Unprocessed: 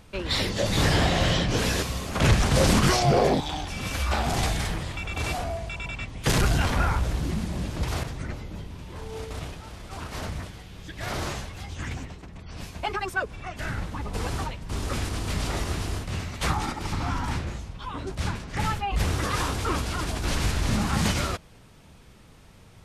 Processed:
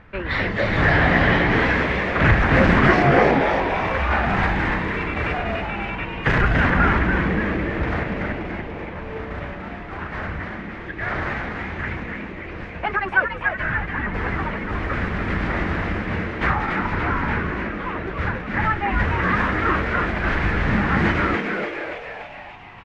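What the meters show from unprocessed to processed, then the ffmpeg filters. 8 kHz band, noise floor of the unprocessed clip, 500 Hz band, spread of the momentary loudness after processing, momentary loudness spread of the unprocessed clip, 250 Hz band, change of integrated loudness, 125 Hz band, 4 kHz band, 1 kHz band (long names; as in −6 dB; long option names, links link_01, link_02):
below −15 dB, −50 dBFS, +6.0 dB, 15 LU, 16 LU, +6.5 dB, +6.0 dB, +3.0 dB, −4.0 dB, +7.5 dB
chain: -filter_complex "[0:a]lowpass=frequency=1800:width_type=q:width=3.1,asplit=9[link_01][link_02][link_03][link_04][link_05][link_06][link_07][link_08][link_09];[link_02]adelay=288,afreqshift=130,volume=-5dB[link_10];[link_03]adelay=576,afreqshift=260,volume=-9.6dB[link_11];[link_04]adelay=864,afreqshift=390,volume=-14.2dB[link_12];[link_05]adelay=1152,afreqshift=520,volume=-18.7dB[link_13];[link_06]adelay=1440,afreqshift=650,volume=-23.3dB[link_14];[link_07]adelay=1728,afreqshift=780,volume=-27.9dB[link_15];[link_08]adelay=2016,afreqshift=910,volume=-32.5dB[link_16];[link_09]adelay=2304,afreqshift=1040,volume=-37.1dB[link_17];[link_01][link_10][link_11][link_12][link_13][link_14][link_15][link_16][link_17]amix=inputs=9:normalize=0,volume=2.5dB"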